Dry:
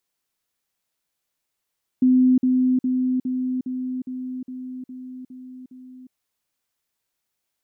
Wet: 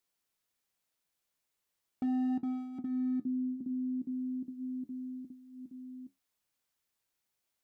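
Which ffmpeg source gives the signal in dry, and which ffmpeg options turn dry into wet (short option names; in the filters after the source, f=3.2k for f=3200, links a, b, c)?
-f lavfi -i "aevalsrc='pow(10,(-12.5-3*floor(t/0.41))/20)*sin(2*PI*255*t)*clip(min(mod(t,0.41),0.36-mod(t,0.41))/0.005,0,1)':d=4.1:s=44100"
-af "acompressor=threshold=-32dB:ratio=2,volume=25.5dB,asoftclip=hard,volume=-25.5dB,flanger=delay=9.8:depth=5.5:regen=-61:speed=0.37:shape=sinusoidal"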